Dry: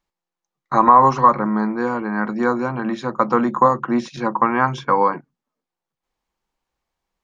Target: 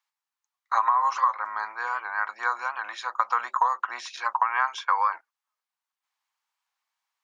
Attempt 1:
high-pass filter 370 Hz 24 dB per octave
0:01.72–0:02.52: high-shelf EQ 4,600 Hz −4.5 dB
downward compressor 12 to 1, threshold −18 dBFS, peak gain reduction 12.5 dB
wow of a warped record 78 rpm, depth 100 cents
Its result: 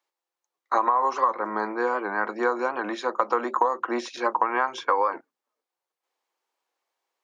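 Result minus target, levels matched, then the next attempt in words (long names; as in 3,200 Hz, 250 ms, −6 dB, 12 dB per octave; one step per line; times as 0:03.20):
500 Hz band +16.5 dB
high-pass filter 930 Hz 24 dB per octave
0:01.72–0:02.52: high-shelf EQ 4,600 Hz −4.5 dB
downward compressor 12 to 1, threshold −18 dBFS, peak gain reduction 10.5 dB
wow of a warped record 78 rpm, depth 100 cents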